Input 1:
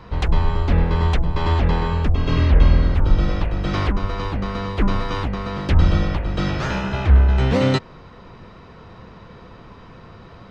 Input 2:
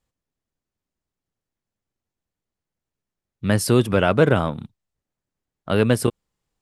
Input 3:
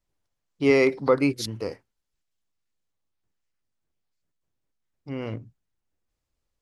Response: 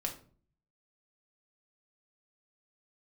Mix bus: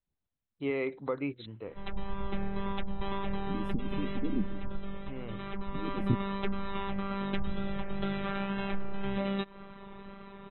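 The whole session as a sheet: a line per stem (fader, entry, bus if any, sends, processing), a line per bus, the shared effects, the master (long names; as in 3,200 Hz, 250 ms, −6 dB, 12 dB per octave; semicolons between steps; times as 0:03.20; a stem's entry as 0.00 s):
−2.5 dB, 1.65 s, bus A, no send, tape wow and flutter 110 cents; phases set to zero 197 Hz; automatic ducking −13 dB, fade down 1.85 s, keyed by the third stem
−3.0 dB, 0.05 s, no bus, no send, harmonic-percussive split with one part muted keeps percussive; inverse Chebyshev low-pass filter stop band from 560 Hz, stop band 40 dB
−11.0 dB, 0.00 s, bus A, no send, no processing
bus A: 0.0 dB, linear-phase brick-wall low-pass 4,100 Hz; downward compressor 6 to 1, threshold −27 dBFS, peak gain reduction 12 dB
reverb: not used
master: no processing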